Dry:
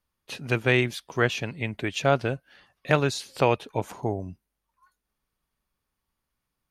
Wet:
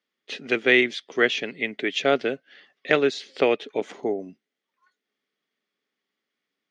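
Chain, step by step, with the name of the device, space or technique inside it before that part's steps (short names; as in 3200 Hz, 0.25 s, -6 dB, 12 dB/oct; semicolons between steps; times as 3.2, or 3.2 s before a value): 2.98–3.59 high shelf 4500 Hz -6 dB; television speaker (speaker cabinet 210–6500 Hz, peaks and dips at 270 Hz +3 dB, 420 Hz +7 dB, 960 Hz -10 dB, 2000 Hz +9 dB, 3300 Hz +7 dB)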